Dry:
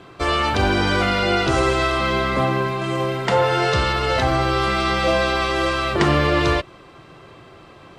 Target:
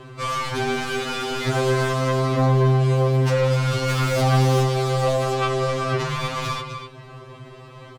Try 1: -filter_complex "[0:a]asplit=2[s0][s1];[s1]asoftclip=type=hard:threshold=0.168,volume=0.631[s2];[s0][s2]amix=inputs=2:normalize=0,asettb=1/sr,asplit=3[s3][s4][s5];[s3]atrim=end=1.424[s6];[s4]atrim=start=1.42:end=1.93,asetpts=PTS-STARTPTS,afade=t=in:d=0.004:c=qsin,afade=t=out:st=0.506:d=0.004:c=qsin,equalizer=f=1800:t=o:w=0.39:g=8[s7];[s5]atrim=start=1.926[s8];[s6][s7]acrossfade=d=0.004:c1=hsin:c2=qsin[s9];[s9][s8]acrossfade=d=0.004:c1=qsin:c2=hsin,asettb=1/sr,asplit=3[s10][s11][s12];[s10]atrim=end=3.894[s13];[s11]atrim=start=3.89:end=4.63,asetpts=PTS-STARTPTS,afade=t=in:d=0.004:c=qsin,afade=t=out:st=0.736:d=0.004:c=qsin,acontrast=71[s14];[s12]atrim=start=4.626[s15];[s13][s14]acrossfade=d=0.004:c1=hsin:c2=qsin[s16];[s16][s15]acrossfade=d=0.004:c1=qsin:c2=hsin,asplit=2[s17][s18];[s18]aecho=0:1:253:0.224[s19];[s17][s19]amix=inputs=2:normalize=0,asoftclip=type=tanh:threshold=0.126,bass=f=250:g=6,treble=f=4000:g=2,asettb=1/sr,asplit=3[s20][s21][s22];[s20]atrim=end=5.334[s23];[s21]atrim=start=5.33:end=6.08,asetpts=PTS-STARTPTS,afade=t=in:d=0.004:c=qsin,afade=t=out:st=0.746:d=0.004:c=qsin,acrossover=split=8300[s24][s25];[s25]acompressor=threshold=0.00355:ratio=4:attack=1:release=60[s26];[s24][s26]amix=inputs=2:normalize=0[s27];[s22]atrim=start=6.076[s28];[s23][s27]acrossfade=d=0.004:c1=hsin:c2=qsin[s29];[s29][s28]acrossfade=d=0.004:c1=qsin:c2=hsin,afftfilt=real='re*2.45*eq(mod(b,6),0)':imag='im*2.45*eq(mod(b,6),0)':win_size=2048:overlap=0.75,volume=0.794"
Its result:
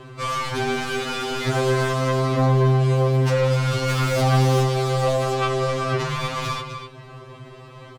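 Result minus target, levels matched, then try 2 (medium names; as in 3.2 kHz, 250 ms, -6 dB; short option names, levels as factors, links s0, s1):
hard clipper: distortion +23 dB
-filter_complex "[0:a]asplit=2[s0][s1];[s1]asoftclip=type=hard:threshold=0.398,volume=0.631[s2];[s0][s2]amix=inputs=2:normalize=0,asettb=1/sr,asplit=3[s3][s4][s5];[s3]atrim=end=1.424[s6];[s4]atrim=start=1.42:end=1.93,asetpts=PTS-STARTPTS,afade=t=in:d=0.004:c=qsin,afade=t=out:st=0.506:d=0.004:c=qsin,equalizer=f=1800:t=o:w=0.39:g=8[s7];[s5]atrim=start=1.926[s8];[s6][s7]acrossfade=d=0.004:c1=hsin:c2=qsin[s9];[s9][s8]acrossfade=d=0.004:c1=qsin:c2=hsin,asettb=1/sr,asplit=3[s10][s11][s12];[s10]atrim=end=3.894[s13];[s11]atrim=start=3.89:end=4.63,asetpts=PTS-STARTPTS,afade=t=in:d=0.004:c=qsin,afade=t=out:st=0.736:d=0.004:c=qsin,acontrast=71[s14];[s12]atrim=start=4.626[s15];[s13][s14]acrossfade=d=0.004:c1=hsin:c2=qsin[s16];[s16][s15]acrossfade=d=0.004:c1=qsin:c2=hsin,asplit=2[s17][s18];[s18]aecho=0:1:253:0.224[s19];[s17][s19]amix=inputs=2:normalize=0,asoftclip=type=tanh:threshold=0.126,bass=f=250:g=6,treble=f=4000:g=2,asettb=1/sr,asplit=3[s20][s21][s22];[s20]atrim=end=5.334[s23];[s21]atrim=start=5.33:end=6.08,asetpts=PTS-STARTPTS,afade=t=in:d=0.004:c=qsin,afade=t=out:st=0.746:d=0.004:c=qsin,acrossover=split=8300[s24][s25];[s25]acompressor=threshold=0.00355:ratio=4:attack=1:release=60[s26];[s24][s26]amix=inputs=2:normalize=0[s27];[s22]atrim=start=6.076[s28];[s23][s27]acrossfade=d=0.004:c1=hsin:c2=qsin[s29];[s29][s28]acrossfade=d=0.004:c1=qsin:c2=hsin,afftfilt=real='re*2.45*eq(mod(b,6),0)':imag='im*2.45*eq(mod(b,6),0)':win_size=2048:overlap=0.75,volume=0.794"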